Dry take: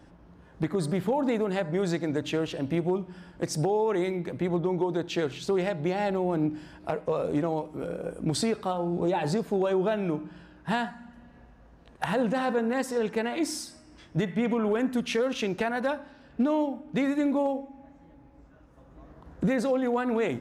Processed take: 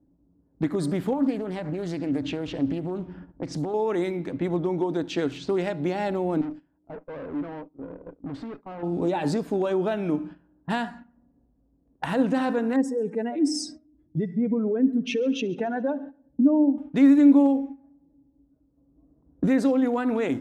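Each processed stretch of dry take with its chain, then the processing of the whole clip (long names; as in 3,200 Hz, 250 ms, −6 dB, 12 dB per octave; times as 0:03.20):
0:01.13–0:03.74: low-shelf EQ 140 Hz +9 dB + downward compressor, threshold −27 dBFS + highs frequency-modulated by the lows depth 0.36 ms
0:06.41–0:08.83: noise gate −34 dBFS, range −8 dB + tube saturation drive 35 dB, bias 0.6
0:12.76–0:16.78: expanding power law on the bin magnitudes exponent 1.9 + echo machine with several playback heads 69 ms, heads first and second, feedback 52%, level −23.5 dB + dynamic equaliser 6,800 Hz, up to +7 dB, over −53 dBFS, Q 1
whole clip: noise gate −43 dBFS, range −13 dB; low-pass that shuts in the quiet parts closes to 440 Hz, open at −27 dBFS; parametric band 280 Hz +13.5 dB 0.22 octaves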